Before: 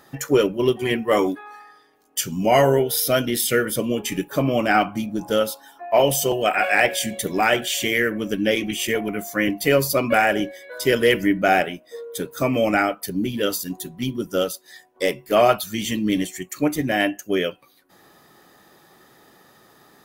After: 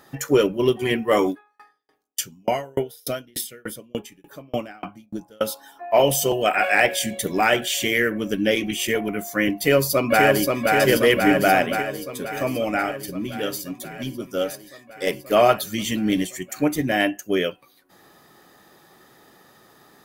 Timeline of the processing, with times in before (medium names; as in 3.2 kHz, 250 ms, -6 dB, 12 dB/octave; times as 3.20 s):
1.30–5.41 s: sawtooth tremolo in dB decaying 3.4 Hz, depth 37 dB
9.55–10.60 s: echo throw 530 ms, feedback 75%, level -2.5 dB
11.82–15.07 s: flange 1.4 Hz, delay 5.9 ms, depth 1.8 ms, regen +77%